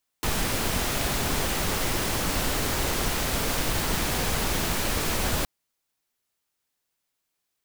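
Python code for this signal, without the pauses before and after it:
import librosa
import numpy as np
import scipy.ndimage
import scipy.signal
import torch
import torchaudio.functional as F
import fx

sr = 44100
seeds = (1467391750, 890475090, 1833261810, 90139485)

y = fx.noise_colour(sr, seeds[0], length_s=5.22, colour='pink', level_db=-26.0)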